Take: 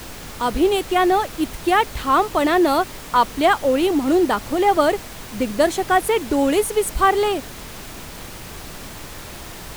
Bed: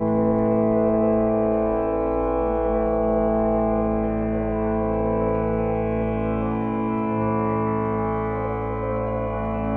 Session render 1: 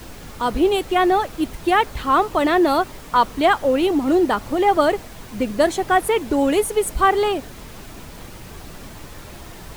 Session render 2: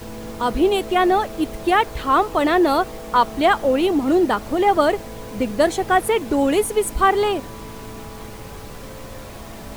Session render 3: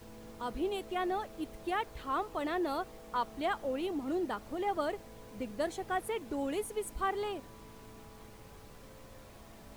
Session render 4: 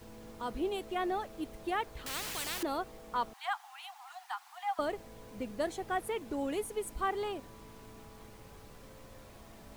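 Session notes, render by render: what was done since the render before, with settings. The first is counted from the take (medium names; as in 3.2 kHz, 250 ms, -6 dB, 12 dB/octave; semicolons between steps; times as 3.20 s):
noise reduction 6 dB, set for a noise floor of -36 dBFS
add bed -15 dB
trim -17 dB
2.06–2.63 s: spectrum-flattening compressor 10:1; 3.33–4.79 s: Chebyshev high-pass 720 Hz, order 10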